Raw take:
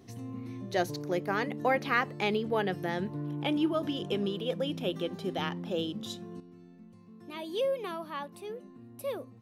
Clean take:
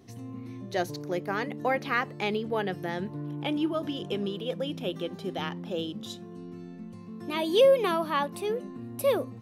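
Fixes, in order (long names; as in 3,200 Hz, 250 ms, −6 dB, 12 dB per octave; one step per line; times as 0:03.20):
level 0 dB, from 0:06.40 +10.5 dB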